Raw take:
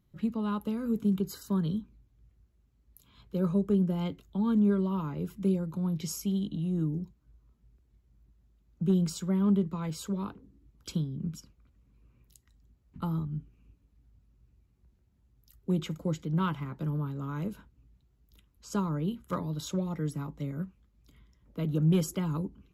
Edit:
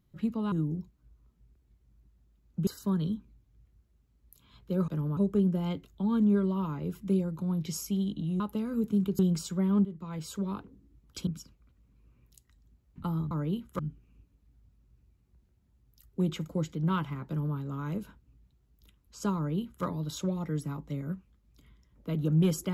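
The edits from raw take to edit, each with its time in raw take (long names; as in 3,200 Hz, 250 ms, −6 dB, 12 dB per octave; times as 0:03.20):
0:00.52–0:01.31: swap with 0:06.75–0:08.90
0:09.56–0:10.27: fade in equal-power, from −16 dB
0:10.98–0:11.25: remove
0:16.77–0:17.06: duplicate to 0:03.52
0:18.86–0:19.34: duplicate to 0:13.29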